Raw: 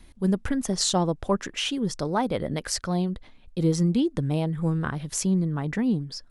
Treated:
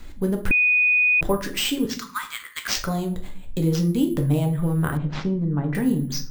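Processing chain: 1.85–2.75 steep high-pass 1100 Hz 72 dB/oct; compressor 2:1, threshold -33 dBFS, peak gain reduction 9 dB; shoebox room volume 42 m³, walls mixed, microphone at 0.4 m; careless resampling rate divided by 4×, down none, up hold; 0.51–1.21 bleep 2480 Hz -22 dBFS; 4.97–5.75 tape spacing loss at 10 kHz 34 dB; gain +7 dB

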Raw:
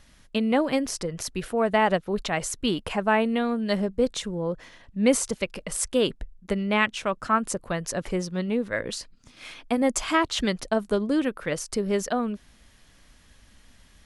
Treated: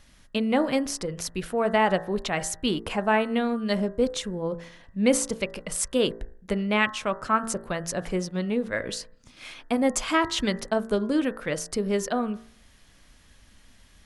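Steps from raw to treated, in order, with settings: de-hum 56.43 Hz, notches 35

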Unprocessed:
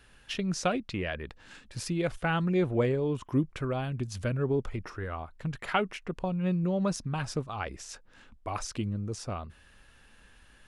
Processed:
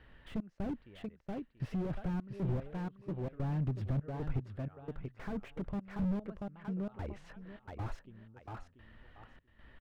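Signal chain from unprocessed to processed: step gate "xx.x....x" 69 bpm -24 dB; speed mistake 44.1 kHz file played as 48 kHz; air absorption 470 m; feedback echo 0.685 s, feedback 21%, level -9 dB; slew limiter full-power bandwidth 4.8 Hz; gain +1.5 dB

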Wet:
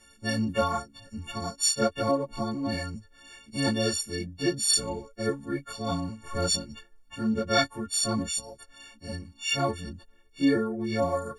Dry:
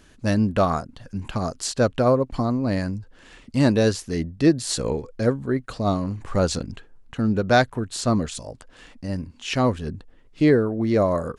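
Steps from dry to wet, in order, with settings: frequency quantiser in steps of 4 st; ensemble effect; gain -5 dB

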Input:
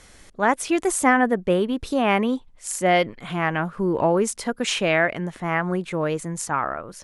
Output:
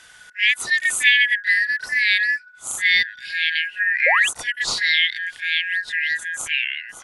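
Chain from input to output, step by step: four-band scrambler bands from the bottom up 4123; reverse echo 32 ms -11 dB; painted sound rise, 4.06–4.29, 480–3600 Hz -22 dBFS; gain +1 dB

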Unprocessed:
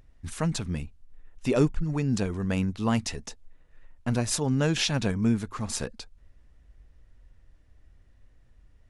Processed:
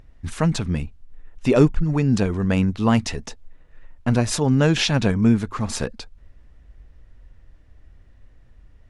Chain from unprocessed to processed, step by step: high shelf 6200 Hz -9.5 dB; gain +7.5 dB

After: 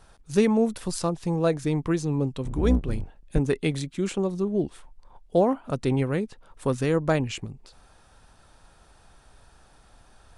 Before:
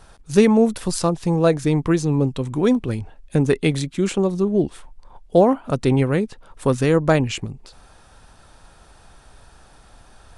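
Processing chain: 2.44–3.39 octaver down 2 oct, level +3 dB; gain -6.5 dB

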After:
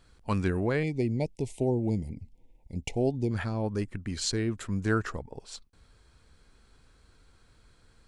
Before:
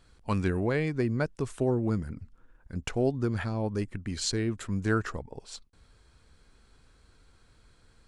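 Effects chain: 0.83–3.31 elliptic band-stop 880–2100 Hz, stop band 40 dB

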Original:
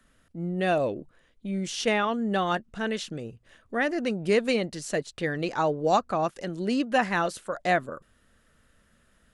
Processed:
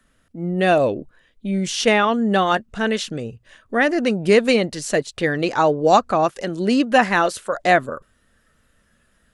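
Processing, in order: spectral noise reduction 7 dB; gain +8.5 dB

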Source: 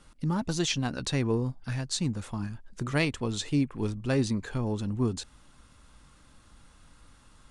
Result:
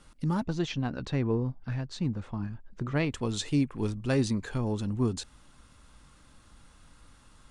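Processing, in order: 0.43–3.11 tape spacing loss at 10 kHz 24 dB

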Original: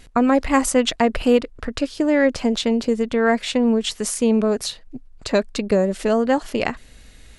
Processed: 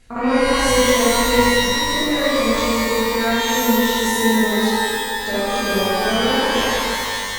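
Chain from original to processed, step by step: reverse echo 58 ms -6.5 dB; shimmer reverb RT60 1.9 s, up +12 st, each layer -2 dB, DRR -6.5 dB; gain -9 dB

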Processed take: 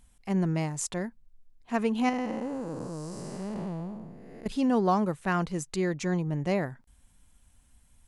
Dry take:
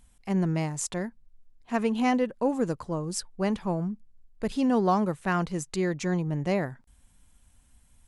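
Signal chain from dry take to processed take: 2.09–4.46 time blur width 0.478 s; gain -1 dB

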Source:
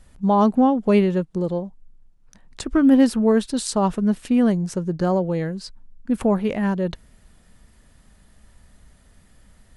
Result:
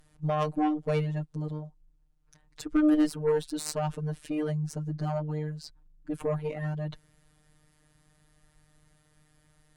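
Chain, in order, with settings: robotiser 152 Hz; added harmonics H 4 -17 dB, 8 -36 dB, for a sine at -6.5 dBFS; gain -5 dB

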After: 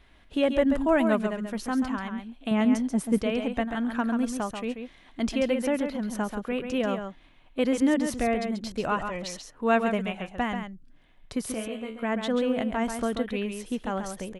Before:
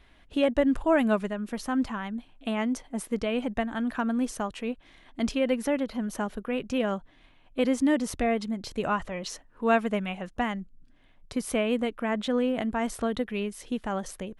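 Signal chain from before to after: 2.51–3.18 bell 140 Hz +8.5 dB 2.7 oct; 11.54–12.03 resonator 74 Hz, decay 0.31 s, harmonics all, mix 90%; echo 0.136 s -7 dB

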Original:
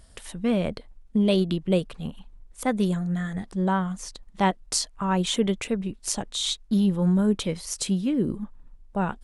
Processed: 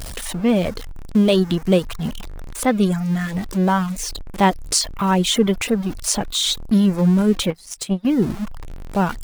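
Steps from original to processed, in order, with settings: zero-crossing step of -31.5 dBFS; reverb removal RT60 0.54 s; 7.5–8.05 power-law curve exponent 2; gain +6 dB

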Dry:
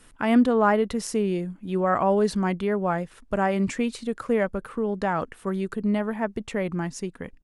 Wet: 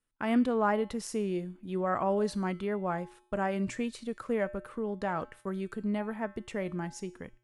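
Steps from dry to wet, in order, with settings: gate -44 dBFS, range -24 dB; resonator 120 Hz, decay 0.58 s, harmonics odd, mix 60%

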